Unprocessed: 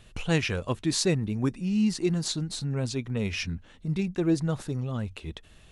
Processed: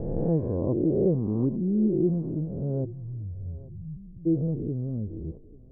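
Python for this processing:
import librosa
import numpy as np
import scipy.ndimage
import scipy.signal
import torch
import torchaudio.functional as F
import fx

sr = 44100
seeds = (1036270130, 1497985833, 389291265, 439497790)

y = fx.spec_swells(x, sr, rise_s=1.62)
y = fx.cheby2_lowpass(y, sr, hz=fx.steps((0.0, 2800.0), (2.84, 530.0), (4.25, 2000.0)), order=4, stop_db=70)
y = fx.echo_thinned(y, sr, ms=839, feedback_pct=26, hz=450.0, wet_db=-17.0)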